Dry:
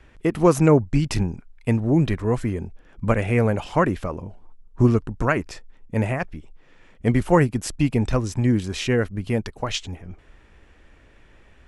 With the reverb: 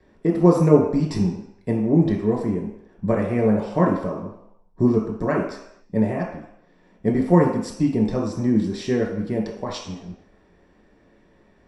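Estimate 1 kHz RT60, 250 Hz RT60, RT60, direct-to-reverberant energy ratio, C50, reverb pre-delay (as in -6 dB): 0.80 s, 0.55 s, 0.75 s, -2.0 dB, 4.5 dB, 3 ms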